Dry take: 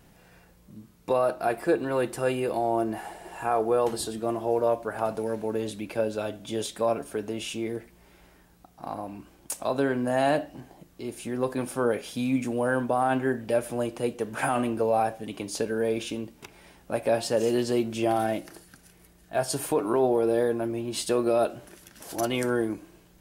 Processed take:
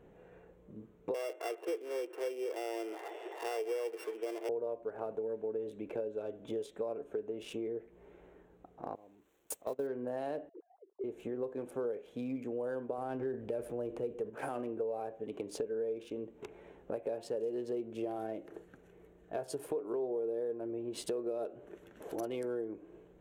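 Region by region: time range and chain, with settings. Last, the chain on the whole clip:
1.14–4.49 sample sorter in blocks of 16 samples + steep high-pass 330 Hz + delay with a stepping band-pass 0.259 s, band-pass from 1400 Hz, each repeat 1.4 oct, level -6 dB
8.95–9.87 switching spikes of -26.5 dBFS + gate -28 dBFS, range -20 dB
10.49–11.04 sine-wave speech + band-pass 310 Hz, Q 0.75 + level quantiser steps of 12 dB
12.98–14.3 low shelf 110 Hz +10.5 dB + transient shaper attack 0 dB, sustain +6 dB
whole clip: Wiener smoothing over 9 samples; bell 440 Hz +15 dB 0.85 oct; compressor 4:1, threshold -30 dBFS; gain -7 dB

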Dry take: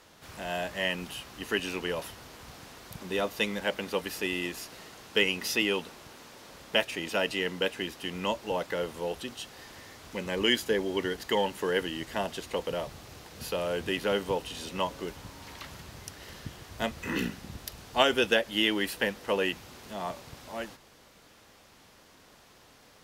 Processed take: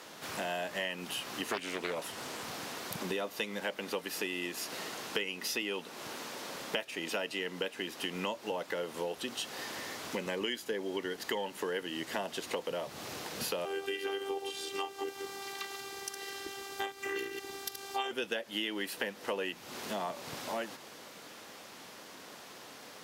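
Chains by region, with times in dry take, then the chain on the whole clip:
1.47–2.43 HPF 50 Hz + bell 8100 Hz +4.5 dB 0.35 oct + Doppler distortion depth 0.43 ms
13.65–18.11 reverse delay 0.107 s, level -8 dB + robotiser 393 Hz
whole clip: HPF 200 Hz 12 dB/oct; compressor 6:1, threshold -41 dBFS; gain +7.5 dB

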